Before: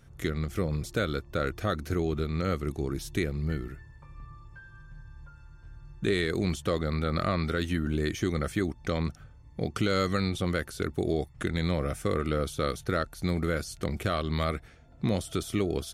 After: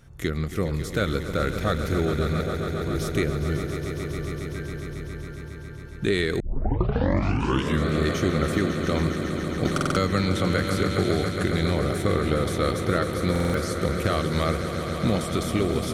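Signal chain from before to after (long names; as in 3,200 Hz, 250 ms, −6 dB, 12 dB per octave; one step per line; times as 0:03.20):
0:02.41–0:02.87: resonant band-pass 640 Hz, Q 4.2
echo that builds up and dies away 137 ms, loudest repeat 5, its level −11 dB
0:06.40: tape start 1.48 s
buffer that repeats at 0:09.73/0:13.31, samples 2,048, times 4
0:09.65–0:11.29: multiband upward and downward compressor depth 70%
level +3.5 dB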